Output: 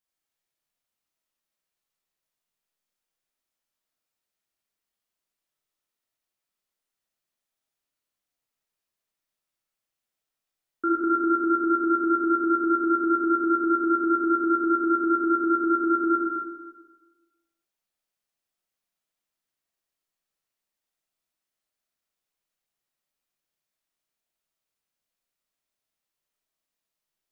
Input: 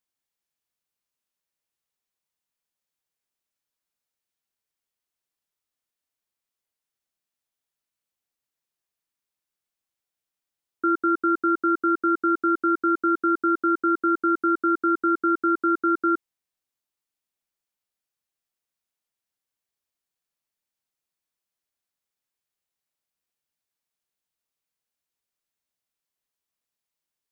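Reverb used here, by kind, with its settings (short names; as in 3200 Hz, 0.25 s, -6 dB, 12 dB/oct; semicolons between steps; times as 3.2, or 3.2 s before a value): digital reverb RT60 1.3 s, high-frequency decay 0.65×, pre-delay 0 ms, DRR -4.5 dB; gain -3.5 dB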